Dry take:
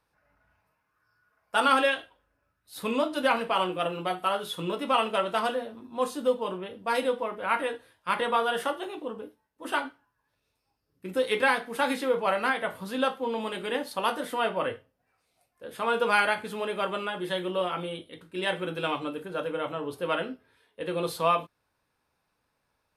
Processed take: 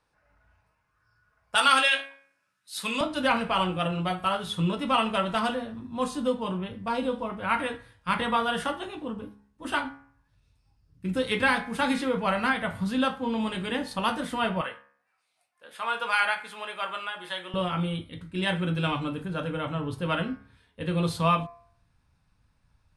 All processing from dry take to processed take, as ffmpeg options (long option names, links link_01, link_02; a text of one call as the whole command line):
ffmpeg -i in.wav -filter_complex "[0:a]asettb=1/sr,asplit=3[link_01][link_02][link_03];[link_01]atrim=end=1.554[link_04];[link_02]atrim=start=1.55:end=3.01,asetpts=PTS-STARTPTS,afade=type=in:duration=0.004:curve=qsin,afade=type=out:start_time=1.456:duration=0.004:curve=qsin,highpass=frequency=180:width=0.5412,highpass=frequency=180:width=1.3066,tiltshelf=frequency=1300:gain=-8,asplit=2[link_05][link_06];[link_06]adelay=15,volume=-12.5dB[link_07];[link_05][link_07]amix=inputs=2:normalize=0,atrim=end_sample=64386[link_08];[link_03]atrim=start=3.006[link_09];[link_04][link_08]acrossfade=duration=0.004:curve1=hsin:curve2=qsin[link_10];[link_10][link_09]acrossfade=duration=0.004:curve1=qsin:curve2=hsin,asettb=1/sr,asplit=3[link_11][link_12][link_13];[link_11]atrim=end=6.884[link_14];[link_12]atrim=start=6.88:end=7.3,asetpts=PTS-STARTPTS,afade=type=in:duration=0.004:curve=qsin,afade=type=out:start_time=0.416:duration=0.004:curve=qsin,lowpass=12000,equalizer=frequency=1900:width_type=o:width=0.66:gain=-11.5,acrossover=split=3300[link_15][link_16];[link_16]acompressor=threshold=-51dB:ratio=4:attack=1:release=60[link_17];[link_15][link_17]amix=inputs=2:normalize=0[link_18];[link_13]atrim=start=7.296[link_19];[link_14][link_18]acrossfade=duration=0.004:curve1=hsin:curve2=qsin[link_20];[link_20][link_19]acrossfade=duration=0.004:curve1=qsin:curve2=hsin,asettb=1/sr,asplit=3[link_21][link_22][link_23];[link_21]atrim=end=14.614[link_24];[link_22]atrim=start=14.61:end=17.54,asetpts=PTS-STARTPTS,afade=type=in:duration=0.004:curve=qsin,afade=type=out:start_time=2.926:duration=0.004:curve=qsin,highpass=750,equalizer=frequency=6200:width=0.96:gain=-4[link_25];[link_23]atrim=start=17.536[link_26];[link_24][link_25]acrossfade=duration=0.004:curve1=hsin:curve2=qsin[link_27];[link_27][link_26]acrossfade=duration=0.004:curve1=qsin:curve2=hsin,lowpass=frequency=10000:width=0.5412,lowpass=frequency=10000:width=1.3066,bandreject=frequency=68.75:width_type=h:width=4,bandreject=frequency=137.5:width_type=h:width=4,bandreject=frequency=206.25:width_type=h:width=4,bandreject=frequency=275:width_type=h:width=4,bandreject=frequency=343.75:width_type=h:width=4,bandreject=frequency=412.5:width_type=h:width=4,bandreject=frequency=481.25:width_type=h:width=4,bandreject=frequency=550:width_type=h:width=4,bandreject=frequency=618.75:width_type=h:width=4,bandreject=frequency=687.5:width_type=h:width=4,bandreject=frequency=756.25:width_type=h:width=4,bandreject=frequency=825:width_type=h:width=4,bandreject=frequency=893.75:width_type=h:width=4,bandreject=frequency=962.5:width_type=h:width=4,bandreject=frequency=1031.25:width_type=h:width=4,bandreject=frequency=1100:width_type=h:width=4,bandreject=frequency=1168.75:width_type=h:width=4,bandreject=frequency=1237.5:width_type=h:width=4,bandreject=frequency=1306.25:width_type=h:width=4,bandreject=frequency=1375:width_type=h:width=4,bandreject=frequency=1443.75:width_type=h:width=4,bandreject=frequency=1512.5:width_type=h:width=4,bandreject=frequency=1581.25:width_type=h:width=4,bandreject=frequency=1650:width_type=h:width=4,bandreject=frequency=1718.75:width_type=h:width=4,bandreject=frequency=1787.5:width_type=h:width=4,bandreject=frequency=1856.25:width_type=h:width=4,bandreject=frequency=1925:width_type=h:width=4,bandreject=frequency=1993.75:width_type=h:width=4,bandreject=frequency=2062.5:width_type=h:width=4,bandreject=frequency=2131.25:width_type=h:width=4,bandreject=frequency=2200:width_type=h:width=4,bandreject=frequency=2268.75:width_type=h:width=4,bandreject=frequency=2337.5:width_type=h:width=4,bandreject=frequency=2406.25:width_type=h:width=4,bandreject=frequency=2475:width_type=h:width=4,bandreject=frequency=2543.75:width_type=h:width=4,asubboost=boost=10.5:cutoff=130,volume=2dB" out.wav